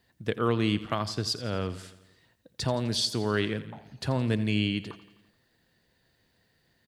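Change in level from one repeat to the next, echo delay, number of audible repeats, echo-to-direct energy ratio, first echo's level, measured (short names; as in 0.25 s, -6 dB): -4.5 dB, 85 ms, 5, -14.0 dB, -16.0 dB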